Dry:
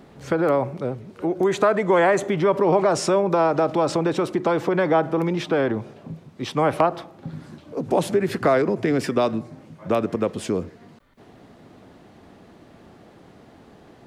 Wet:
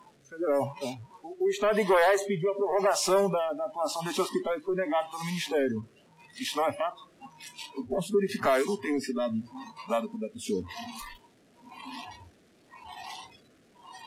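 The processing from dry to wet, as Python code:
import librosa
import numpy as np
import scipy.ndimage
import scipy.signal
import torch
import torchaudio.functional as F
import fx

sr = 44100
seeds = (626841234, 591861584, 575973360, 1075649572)

y = fx.delta_mod(x, sr, bps=64000, step_db=-26.5)
y = fx.low_shelf(y, sr, hz=100.0, db=-10.0)
y = 10.0 ** (-16.5 / 20.0) * np.tanh(y / 10.0 ** (-16.5 / 20.0))
y = fx.rotary(y, sr, hz=0.9)
y = fx.noise_reduce_blind(y, sr, reduce_db=24)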